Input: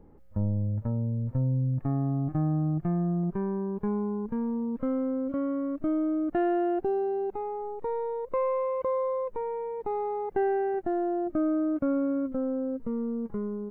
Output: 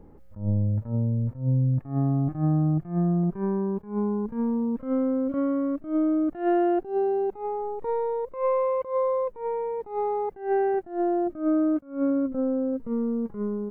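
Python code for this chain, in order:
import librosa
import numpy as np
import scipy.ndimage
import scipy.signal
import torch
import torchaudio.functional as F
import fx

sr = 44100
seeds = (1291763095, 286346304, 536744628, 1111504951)

y = fx.high_shelf(x, sr, hz=2500.0, db=-10.0, at=(12.1, 12.73))
y = fx.attack_slew(y, sr, db_per_s=150.0)
y = y * librosa.db_to_amplitude(4.5)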